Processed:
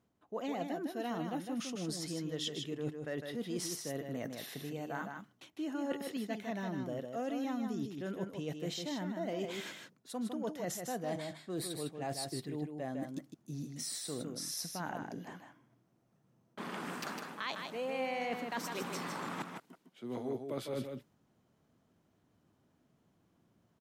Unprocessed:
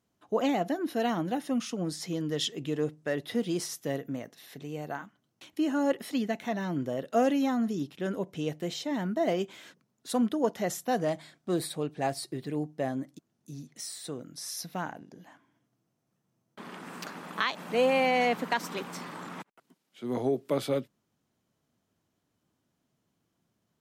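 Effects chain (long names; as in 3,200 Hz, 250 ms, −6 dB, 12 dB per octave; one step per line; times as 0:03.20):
reversed playback
downward compressor 5 to 1, threshold −43 dBFS, peak gain reduction 20 dB
reversed playback
single-tap delay 155 ms −5.5 dB
one half of a high-frequency compander decoder only
level +5 dB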